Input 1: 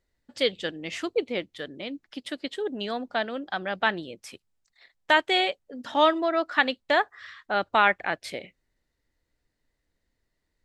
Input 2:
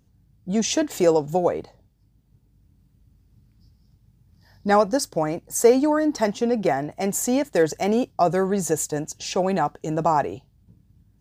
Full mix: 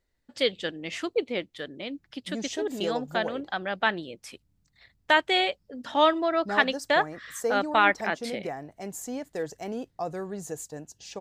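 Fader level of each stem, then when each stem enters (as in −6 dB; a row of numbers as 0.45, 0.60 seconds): −0.5, −13.0 decibels; 0.00, 1.80 seconds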